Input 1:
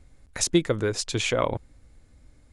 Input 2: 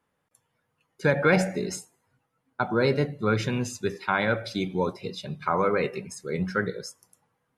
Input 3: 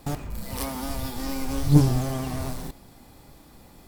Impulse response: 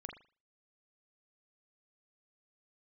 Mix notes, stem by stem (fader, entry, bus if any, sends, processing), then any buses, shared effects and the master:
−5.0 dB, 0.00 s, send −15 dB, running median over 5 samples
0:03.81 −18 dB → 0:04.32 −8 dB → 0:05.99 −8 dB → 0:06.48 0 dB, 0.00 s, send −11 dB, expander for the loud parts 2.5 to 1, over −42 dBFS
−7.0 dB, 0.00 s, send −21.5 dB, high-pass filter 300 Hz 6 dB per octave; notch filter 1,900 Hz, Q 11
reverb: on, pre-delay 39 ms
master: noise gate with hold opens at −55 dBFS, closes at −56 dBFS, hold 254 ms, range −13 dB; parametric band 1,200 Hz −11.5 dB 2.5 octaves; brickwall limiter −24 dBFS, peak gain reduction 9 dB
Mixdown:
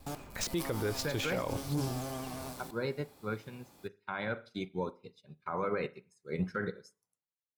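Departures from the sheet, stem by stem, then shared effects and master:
stem 2 −18.0 dB → −7.0 dB
master: missing parametric band 1,200 Hz −11.5 dB 2.5 octaves

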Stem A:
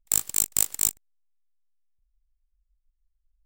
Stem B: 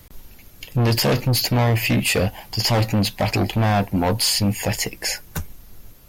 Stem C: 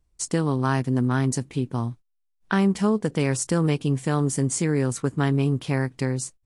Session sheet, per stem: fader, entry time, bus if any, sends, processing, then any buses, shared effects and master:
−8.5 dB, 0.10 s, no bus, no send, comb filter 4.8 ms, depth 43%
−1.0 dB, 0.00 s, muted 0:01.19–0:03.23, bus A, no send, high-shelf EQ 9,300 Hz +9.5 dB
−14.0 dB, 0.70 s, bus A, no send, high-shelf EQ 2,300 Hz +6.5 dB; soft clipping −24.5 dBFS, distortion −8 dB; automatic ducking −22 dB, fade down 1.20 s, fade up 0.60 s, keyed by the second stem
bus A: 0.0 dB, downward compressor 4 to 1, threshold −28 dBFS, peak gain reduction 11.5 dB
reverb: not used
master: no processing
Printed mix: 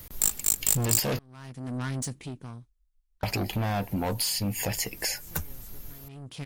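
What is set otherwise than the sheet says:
stem A −8.5 dB → −2.0 dB
stem C −14.0 dB → −2.5 dB

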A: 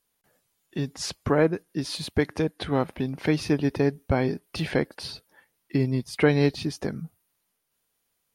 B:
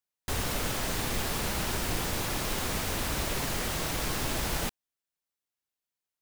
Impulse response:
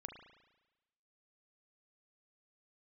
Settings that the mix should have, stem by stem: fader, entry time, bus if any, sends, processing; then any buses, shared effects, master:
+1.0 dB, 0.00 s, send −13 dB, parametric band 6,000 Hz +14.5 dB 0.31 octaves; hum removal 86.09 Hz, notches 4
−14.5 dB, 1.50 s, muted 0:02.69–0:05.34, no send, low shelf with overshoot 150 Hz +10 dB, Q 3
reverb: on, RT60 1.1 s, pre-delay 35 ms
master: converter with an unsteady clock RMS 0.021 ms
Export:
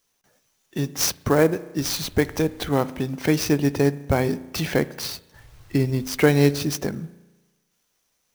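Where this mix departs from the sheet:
stem A: send −13 dB → −5 dB
stem B −14.5 dB → −24.5 dB

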